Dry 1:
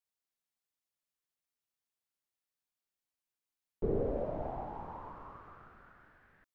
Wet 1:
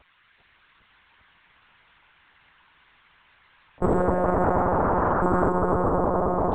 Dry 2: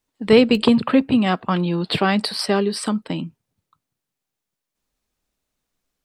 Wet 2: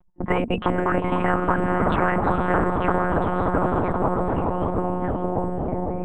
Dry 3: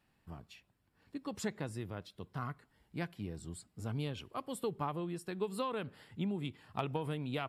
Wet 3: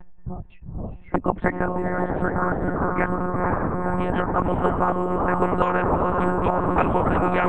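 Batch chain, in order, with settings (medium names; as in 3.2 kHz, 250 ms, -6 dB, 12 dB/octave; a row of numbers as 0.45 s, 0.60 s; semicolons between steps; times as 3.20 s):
expander on every frequency bin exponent 2; gate with hold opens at -47 dBFS; low-pass 1.1 kHz 24 dB/octave; compression 10:1, threshold -22 dBFS; ever faster or slower copies 401 ms, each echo -4 st, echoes 3; upward compressor, threshold -47 dBFS; echo that smears into a reverb 478 ms, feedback 54%, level -9 dB; monotone LPC vocoder at 8 kHz 180 Hz; spectrum-flattening compressor 4:1; normalise loudness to -23 LUFS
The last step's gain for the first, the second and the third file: +14.0 dB, +6.5 dB, +21.0 dB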